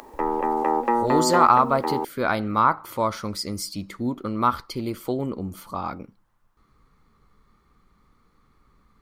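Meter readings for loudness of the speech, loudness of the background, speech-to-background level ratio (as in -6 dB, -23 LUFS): -24.0 LUFS, -24.5 LUFS, 0.5 dB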